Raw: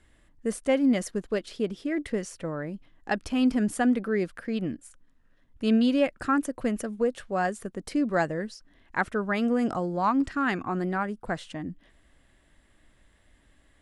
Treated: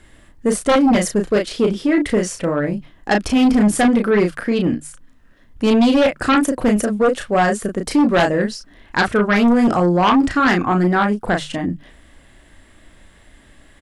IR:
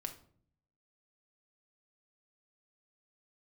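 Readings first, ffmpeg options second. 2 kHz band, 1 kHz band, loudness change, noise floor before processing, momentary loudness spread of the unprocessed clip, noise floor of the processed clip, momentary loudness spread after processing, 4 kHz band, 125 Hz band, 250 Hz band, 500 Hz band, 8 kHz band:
+11.5 dB, +11.5 dB, +11.0 dB, −62 dBFS, 11 LU, −50 dBFS, 9 LU, +14.0 dB, +12.5 dB, +10.5 dB, +11.5 dB, +14.0 dB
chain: -filter_complex "[0:a]bandreject=frequency=50:width_type=h:width=6,bandreject=frequency=100:width_type=h:width=6,bandreject=frequency=150:width_type=h:width=6,asplit=2[link_01][link_02];[link_02]adelay=34,volume=-5dB[link_03];[link_01][link_03]amix=inputs=2:normalize=0,aeval=exprs='0.335*sin(PI/2*2.82*val(0)/0.335)':channel_layout=same"

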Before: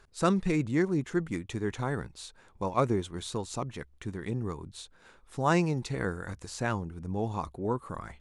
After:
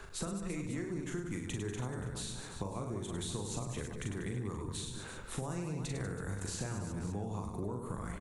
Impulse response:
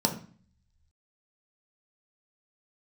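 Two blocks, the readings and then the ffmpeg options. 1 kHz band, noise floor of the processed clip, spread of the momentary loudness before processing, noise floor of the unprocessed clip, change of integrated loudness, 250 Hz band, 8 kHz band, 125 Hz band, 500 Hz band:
−12.5 dB, −46 dBFS, 14 LU, −60 dBFS, −8.0 dB, −8.5 dB, +2.0 dB, −5.0 dB, −10.0 dB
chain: -filter_complex "[0:a]acompressor=threshold=-38dB:ratio=6,equalizer=frequency=4900:width=3:gain=-6,aecho=1:1:40|100|190|325|527.5:0.631|0.398|0.251|0.158|0.1,asplit=2[link_01][link_02];[1:a]atrim=start_sample=2205,adelay=148[link_03];[link_02][link_03]afir=irnorm=-1:irlink=0,volume=-28dB[link_04];[link_01][link_04]amix=inputs=2:normalize=0,acrossover=split=91|430|6100[link_05][link_06][link_07][link_08];[link_05]acompressor=threshold=-56dB:ratio=4[link_09];[link_06]acompressor=threshold=-52dB:ratio=4[link_10];[link_07]acompressor=threshold=-58dB:ratio=4[link_11];[link_08]acompressor=threshold=-57dB:ratio=4[link_12];[link_09][link_10][link_11][link_12]amix=inputs=4:normalize=0,volume=11dB"

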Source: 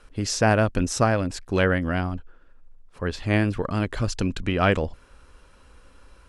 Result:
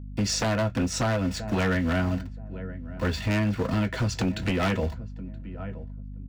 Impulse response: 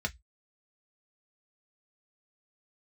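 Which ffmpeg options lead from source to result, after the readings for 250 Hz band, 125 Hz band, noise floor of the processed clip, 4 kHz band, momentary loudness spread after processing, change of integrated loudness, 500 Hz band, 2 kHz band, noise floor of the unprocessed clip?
−1.0 dB, −1.5 dB, −38 dBFS, 0.0 dB, 14 LU, −3.0 dB, −5.0 dB, −4.0 dB, −53 dBFS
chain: -filter_complex "[0:a]aeval=exprs='val(0)*gte(abs(val(0)),0.0141)':channel_layout=same,highpass=120,asplit=2[link_01][link_02];[link_02]adelay=975,lowpass=frequency=940:poles=1,volume=-21dB,asplit=2[link_03][link_04];[link_04]adelay=975,lowpass=frequency=940:poles=1,volume=0.24[link_05];[link_01][link_03][link_05]amix=inputs=3:normalize=0[link_06];[1:a]atrim=start_sample=2205[link_07];[link_06][link_07]afir=irnorm=-1:irlink=0,aeval=exprs='val(0)+0.0141*(sin(2*PI*50*n/s)+sin(2*PI*2*50*n/s)/2+sin(2*PI*3*50*n/s)/3+sin(2*PI*4*50*n/s)/4+sin(2*PI*5*50*n/s)/5)':channel_layout=same,acompressor=threshold=-21dB:ratio=4,aeval=exprs='0.119*(abs(mod(val(0)/0.119+3,4)-2)-1)':channel_layout=same,bandreject=frequency=600:width=19"

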